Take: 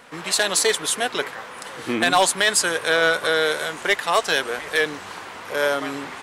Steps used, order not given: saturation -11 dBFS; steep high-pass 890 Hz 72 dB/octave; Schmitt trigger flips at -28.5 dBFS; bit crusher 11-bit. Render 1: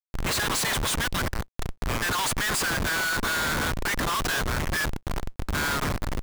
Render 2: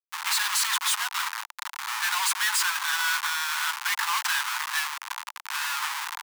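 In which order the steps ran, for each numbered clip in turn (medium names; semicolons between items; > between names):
steep high-pass > saturation > Schmitt trigger > bit crusher; bit crusher > Schmitt trigger > steep high-pass > saturation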